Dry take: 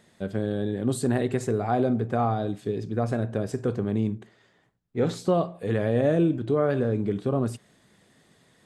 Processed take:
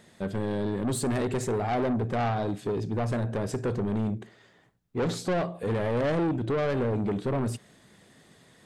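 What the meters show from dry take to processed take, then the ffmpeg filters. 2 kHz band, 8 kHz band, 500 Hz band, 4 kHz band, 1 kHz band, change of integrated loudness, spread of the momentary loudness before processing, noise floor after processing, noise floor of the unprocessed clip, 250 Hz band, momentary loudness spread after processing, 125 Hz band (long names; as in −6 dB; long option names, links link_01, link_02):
+1.0 dB, +2.0 dB, −3.0 dB, +2.0 dB, −1.5 dB, −2.5 dB, 7 LU, −60 dBFS, −63 dBFS, −3.0 dB, 5 LU, −2.0 dB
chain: -af "asoftclip=type=tanh:threshold=-27dB,volume=3.5dB"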